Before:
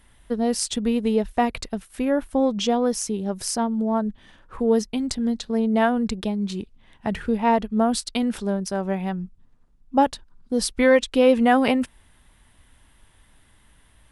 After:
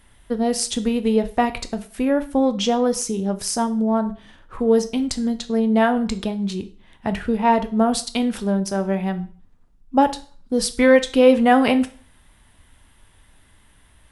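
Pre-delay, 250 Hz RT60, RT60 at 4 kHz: 6 ms, 0.45 s, 0.40 s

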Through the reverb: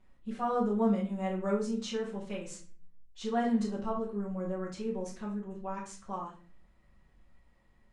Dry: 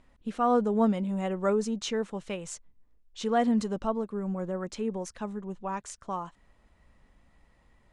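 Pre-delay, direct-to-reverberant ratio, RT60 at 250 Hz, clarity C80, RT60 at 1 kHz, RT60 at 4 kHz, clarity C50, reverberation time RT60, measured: 5 ms, -9.0 dB, 0.65 s, 12.0 dB, 0.35 s, 0.35 s, 7.0 dB, 0.40 s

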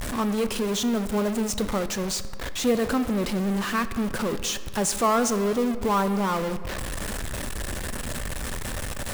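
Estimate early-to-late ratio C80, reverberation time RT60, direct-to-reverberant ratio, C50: 14.5 dB, 1.9 s, 11.5 dB, 13.0 dB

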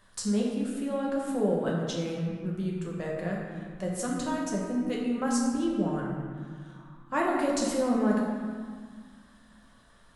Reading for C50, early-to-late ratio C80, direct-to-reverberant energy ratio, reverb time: 0.5 dB, 2.0 dB, -3.5 dB, 1.8 s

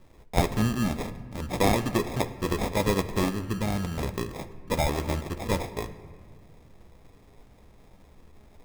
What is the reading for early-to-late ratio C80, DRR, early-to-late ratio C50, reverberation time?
14.5 dB, 9.0 dB, 13.0 dB, 1.7 s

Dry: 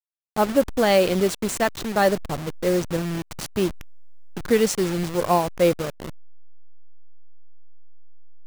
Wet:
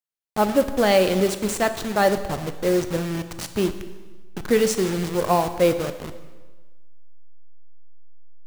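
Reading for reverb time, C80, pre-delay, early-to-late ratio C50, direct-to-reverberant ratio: 1.3 s, 12.5 dB, 8 ms, 11.0 dB, 9.5 dB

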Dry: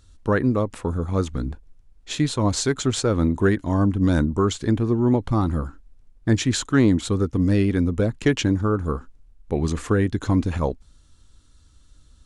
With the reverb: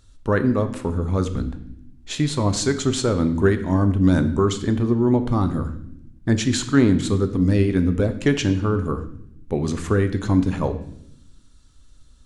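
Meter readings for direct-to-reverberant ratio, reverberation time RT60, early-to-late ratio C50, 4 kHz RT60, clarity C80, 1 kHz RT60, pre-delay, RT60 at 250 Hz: 8.5 dB, 0.75 s, 12.0 dB, 0.75 s, 14.0 dB, 0.65 s, 3 ms, 1.3 s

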